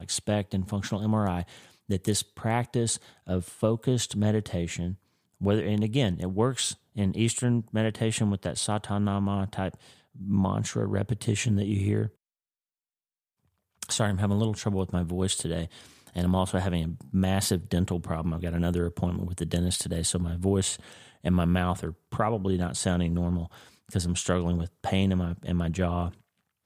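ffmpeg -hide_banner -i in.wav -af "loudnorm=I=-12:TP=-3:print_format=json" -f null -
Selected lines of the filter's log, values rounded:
"input_i" : "-28.3",
"input_tp" : "-10.6",
"input_lra" : "1.8",
"input_thresh" : "-38.6",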